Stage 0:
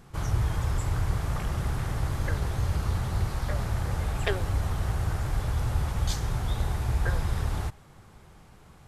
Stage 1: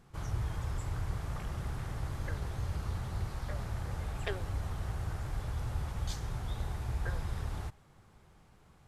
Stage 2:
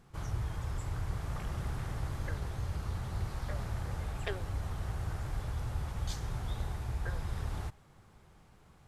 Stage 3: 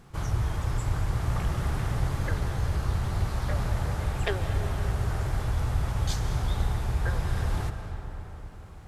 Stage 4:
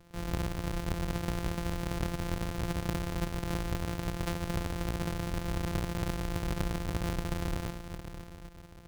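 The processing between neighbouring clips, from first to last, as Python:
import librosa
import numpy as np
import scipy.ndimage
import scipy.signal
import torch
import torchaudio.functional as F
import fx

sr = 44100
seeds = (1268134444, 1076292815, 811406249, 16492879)

y1 = fx.high_shelf(x, sr, hz=11000.0, db=-4.0)
y1 = y1 * 10.0 ** (-8.5 / 20.0)
y2 = fx.rider(y1, sr, range_db=10, speed_s=0.5)
y3 = fx.rev_freeverb(y2, sr, rt60_s=4.3, hf_ratio=0.5, predelay_ms=120, drr_db=7.0)
y3 = y3 * 10.0 ** (8.0 / 20.0)
y4 = np.r_[np.sort(y3[:len(y3) // 256 * 256].reshape(-1, 256), axis=1).ravel(), y3[len(y3) // 256 * 256:]]
y4 = y4 * 10.0 ** (-6.5 / 20.0)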